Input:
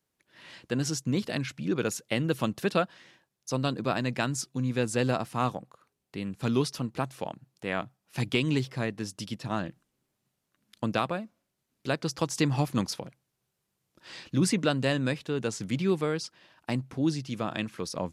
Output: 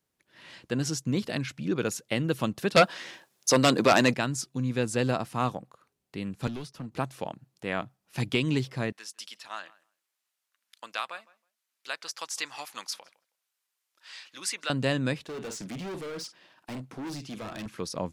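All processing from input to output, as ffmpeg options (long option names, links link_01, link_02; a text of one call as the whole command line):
ffmpeg -i in.wav -filter_complex "[0:a]asettb=1/sr,asplit=3[link_01][link_02][link_03];[link_01]atrim=end=2.764[link_04];[link_02]atrim=start=2.76:end=4.14,asetpts=PTS-STARTPTS,afade=type=in:duration=0.004:curve=qsin,afade=type=out:start_time=1.376:duration=0.004:curve=qsin,bass=frequency=250:gain=-9,treble=frequency=4000:gain=2,aeval=exprs='0.266*sin(PI/2*2.82*val(0)/0.266)':channel_layout=same,highpass=110[link_05];[link_03]atrim=start=4.136[link_06];[link_04][link_05]acrossfade=duration=0.004:curve1=hsin:curve2=qsin[link_07];[link_07][link_06]acrossfade=duration=0.004:curve1=qsin:curve2=hsin,asettb=1/sr,asplit=3[link_08][link_09][link_10];[link_08]atrim=end=6.474[link_11];[link_09]atrim=start=6.47:end=6.92,asetpts=PTS-STARTPTS,afade=type=in:duration=0.004:curve=qsin,afade=type=out:start_time=0.446:duration=0.004:curve=qsin,aeval=exprs='clip(val(0),-1,0.0531)':channel_layout=same,acrossover=split=200|2400[link_12][link_13][link_14];[link_12]acompressor=threshold=-40dB:ratio=4[link_15];[link_13]acompressor=threshold=-41dB:ratio=4[link_16];[link_14]acompressor=threshold=-50dB:ratio=4[link_17];[link_15][link_16][link_17]amix=inputs=3:normalize=0,agate=range=-33dB:threshold=-50dB:ratio=3:release=100:detection=peak[link_18];[link_10]atrim=start=6.916[link_19];[link_11][link_18]acrossfade=duration=0.004:curve1=hsin:curve2=qsin[link_20];[link_20][link_19]acrossfade=duration=0.004:curve1=qsin:curve2=hsin,asettb=1/sr,asplit=3[link_21][link_22][link_23];[link_21]atrim=end=8.924[link_24];[link_22]atrim=start=8.92:end=14.7,asetpts=PTS-STARTPTS,afade=type=in:duration=0.004:curve=qsin,afade=type=out:start_time=5.776:duration=0.004:curve=qsin,highpass=1200,asplit=2[link_25][link_26];[link_26]adelay=160,lowpass=frequency=2300:poles=1,volume=-21dB,asplit=2[link_27][link_28];[link_28]adelay=160,lowpass=frequency=2300:poles=1,volume=0.15[link_29];[link_25][link_27][link_29]amix=inputs=3:normalize=0,atrim=end_sample=254898[link_30];[link_23]atrim=start=14.696[link_31];[link_24][link_30]acrossfade=duration=0.004:curve1=hsin:curve2=qsin[link_32];[link_32][link_31]acrossfade=duration=0.004:curve1=qsin:curve2=hsin,asettb=1/sr,asplit=3[link_33][link_34][link_35];[link_33]atrim=end=15.244[link_36];[link_34]atrim=start=15.24:end=17.66,asetpts=PTS-STARTPTS,afade=type=in:duration=0.004:curve=qsin,afade=type=out:start_time=2.416:duration=0.004:curve=qsin,highpass=170,asplit=2[link_37][link_38];[link_38]adelay=47,volume=-13.5dB[link_39];[link_37][link_39]amix=inputs=2:normalize=0,atrim=end_sample=106722,volume=34.5dB,asoftclip=hard,volume=-34.5dB[link_40];[link_35]atrim=start=17.656[link_41];[link_36][link_40]acrossfade=duration=0.004:curve1=hsin:curve2=qsin[link_42];[link_42][link_41]acrossfade=duration=0.004:curve1=qsin:curve2=hsin" out.wav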